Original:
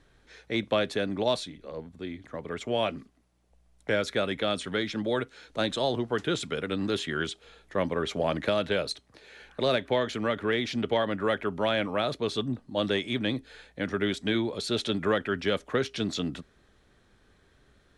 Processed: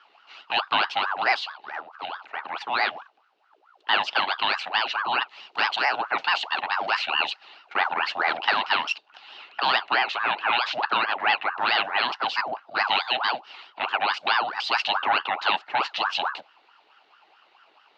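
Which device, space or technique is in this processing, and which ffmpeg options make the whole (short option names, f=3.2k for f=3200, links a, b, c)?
voice changer toy: -af "aeval=exprs='val(0)*sin(2*PI*890*n/s+890*0.6/4.6*sin(2*PI*4.6*n/s))':c=same,highpass=490,equalizer=f=510:t=q:w=4:g=-6,equalizer=f=810:t=q:w=4:g=6,equalizer=f=1.4k:t=q:w=4:g=4,equalizer=f=2.8k:t=q:w=4:g=10,equalizer=f=4.1k:t=q:w=4:g=5,lowpass=f=5k:w=0.5412,lowpass=f=5k:w=1.3066,volume=4.5dB"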